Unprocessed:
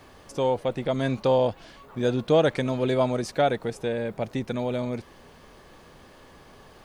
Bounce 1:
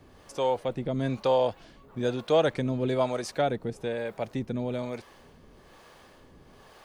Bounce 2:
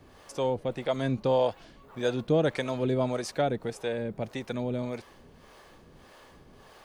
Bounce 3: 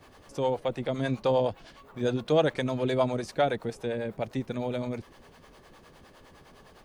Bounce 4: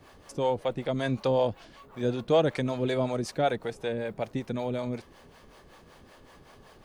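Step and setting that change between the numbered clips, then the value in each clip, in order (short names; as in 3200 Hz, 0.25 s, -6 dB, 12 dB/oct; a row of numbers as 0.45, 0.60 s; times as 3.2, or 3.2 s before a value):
harmonic tremolo, rate: 1.1, 1.7, 9.8, 5.3 Hz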